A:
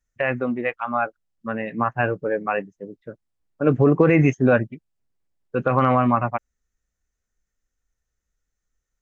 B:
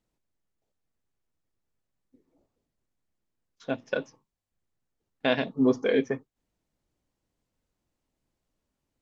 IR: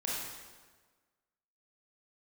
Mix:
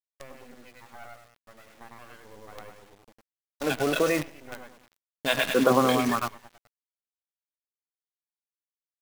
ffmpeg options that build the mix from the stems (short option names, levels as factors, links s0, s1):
-filter_complex "[0:a]acrossover=split=200 3000:gain=0.0631 1 0.178[s0][s1][s2];[s0][s1][s2]amix=inputs=3:normalize=0,volume=0.501,asplit=2[s3][s4];[s4]volume=0.119[s5];[1:a]agate=range=0.447:threshold=0.00178:ratio=16:detection=peak,tiltshelf=f=1100:g=-10,acrossover=split=520[s6][s7];[s6]aeval=exprs='val(0)*(1-1/2+1/2*cos(2*PI*8.2*n/s))':c=same[s8];[s7]aeval=exprs='val(0)*(1-1/2-1/2*cos(2*PI*8.2*n/s))':c=same[s9];[s8][s9]amix=inputs=2:normalize=0,volume=1.12,asplit=4[s10][s11][s12][s13];[s11]volume=0.168[s14];[s12]volume=0.355[s15];[s13]apad=whole_len=397373[s16];[s3][s16]sidechaingate=range=0.141:threshold=0.00126:ratio=16:detection=peak[s17];[2:a]atrim=start_sample=2205[s18];[s14][s18]afir=irnorm=-1:irlink=0[s19];[s5][s15]amix=inputs=2:normalize=0,aecho=0:1:102|204|306|408|510|612:1|0.4|0.16|0.064|0.0256|0.0102[s20];[s17][s10][s19][s20]amix=inputs=4:normalize=0,aphaser=in_gain=1:out_gain=1:delay=1.6:decay=0.57:speed=0.36:type=sinusoidal,acrusher=bits=6:dc=4:mix=0:aa=0.000001"